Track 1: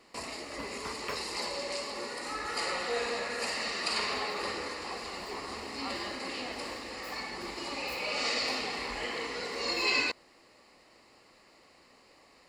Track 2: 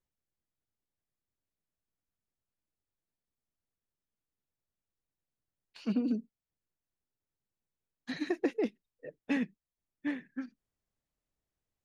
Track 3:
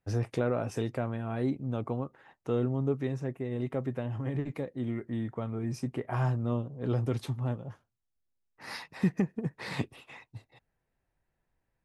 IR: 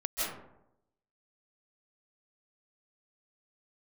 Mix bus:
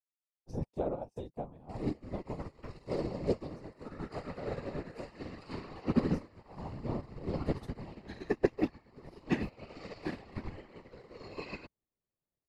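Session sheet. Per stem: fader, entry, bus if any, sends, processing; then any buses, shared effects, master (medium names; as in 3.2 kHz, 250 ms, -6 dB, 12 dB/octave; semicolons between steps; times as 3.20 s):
-1.0 dB, 1.55 s, no send, tilt EQ -4.5 dB/octave; peaking EQ 84 Hz +12 dB 0.36 oct
+3.0 dB, 0.00 s, no send, none
+0.5 dB, 0.40 s, no send, FFT filter 330 Hz 0 dB, 890 Hz +5 dB, 1.5 kHz -14 dB, 4.8 kHz 0 dB; auto duck -9 dB, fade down 0.30 s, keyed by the second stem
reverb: none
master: whisper effect; upward expansion 2.5:1, over -48 dBFS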